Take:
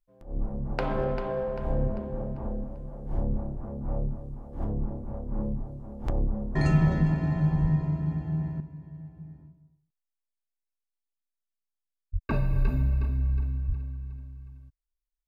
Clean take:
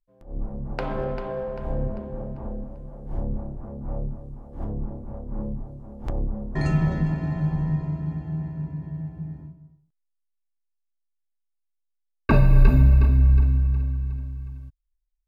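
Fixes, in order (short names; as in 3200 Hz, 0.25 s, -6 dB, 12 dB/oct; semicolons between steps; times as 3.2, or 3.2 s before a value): de-plosive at 7.61/12.12/12.52/13.67; gain correction +10 dB, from 8.6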